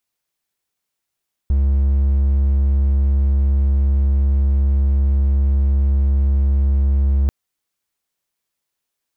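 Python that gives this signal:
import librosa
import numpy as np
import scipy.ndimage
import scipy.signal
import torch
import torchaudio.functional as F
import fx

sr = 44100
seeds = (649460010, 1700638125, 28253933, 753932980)

y = 10.0 ** (-10.5 / 20.0) * (1.0 - 4.0 * np.abs(np.mod(68.7 * (np.arange(round(5.79 * sr)) / sr) + 0.25, 1.0) - 0.5))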